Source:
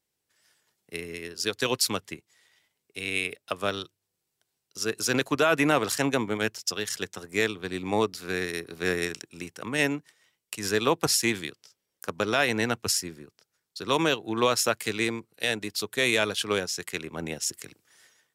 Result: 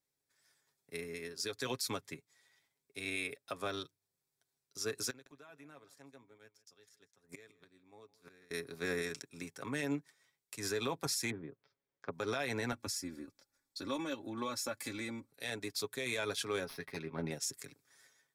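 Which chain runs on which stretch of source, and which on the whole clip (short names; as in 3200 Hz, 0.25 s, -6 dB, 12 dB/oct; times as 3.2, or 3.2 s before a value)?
5.1–8.51 flipped gate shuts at -26 dBFS, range -27 dB + echo 0.16 s -19.5 dB
11.3–12.13 treble ducked by the level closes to 800 Hz, closed at -32 dBFS + Gaussian blur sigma 2.4 samples
12.72–15.31 low shelf 360 Hz +7 dB + comb 3.5 ms, depth 88% + compressor 2.5:1, threshold -33 dBFS
16.65–17.31 self-modulated delay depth 0.15 ms + running mean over 6 samples + doubler 12 ms -6 dB
whole clip: notch 2900 Hz, Q 5.2; comb 7.3 ms, depth 50%; limiter -18.5 dBFS; gain -7.5 dB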